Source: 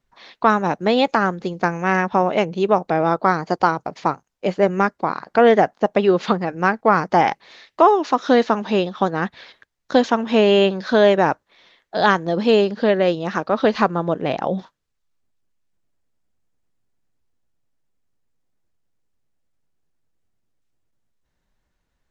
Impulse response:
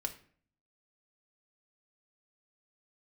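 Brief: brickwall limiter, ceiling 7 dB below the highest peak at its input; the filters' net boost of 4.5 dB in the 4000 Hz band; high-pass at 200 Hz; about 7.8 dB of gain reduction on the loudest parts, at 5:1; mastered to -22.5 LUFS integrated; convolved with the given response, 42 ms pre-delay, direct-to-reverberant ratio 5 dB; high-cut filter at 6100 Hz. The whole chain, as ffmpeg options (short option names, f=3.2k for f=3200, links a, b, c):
-filter_complex "[0:a]highpass=200,lowpass=6.1k,equalizer=f=4k:t=o:g=6.5,acompressor=threshold=-17dB:ratio=5,alimiter=limit=-11.5dB:level=0:latency=1,asplit=2[a][b];[1:a]atrim=start_sample=2205,adelay=42[c];[b][c]afir=irnorm=-1:irlink=0,volume=-5.5dB[d];[a][d]amix=inputs=2:normalize=0,volume=1.5dB"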